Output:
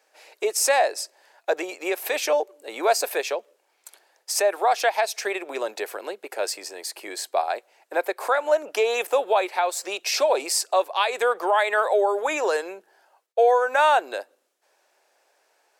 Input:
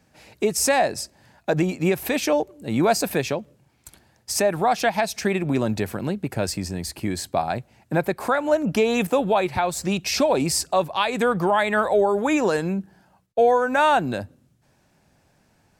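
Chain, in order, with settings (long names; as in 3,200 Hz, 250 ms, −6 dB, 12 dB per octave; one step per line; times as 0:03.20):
Butterworth high-pass 410 Hz 36 dB per octave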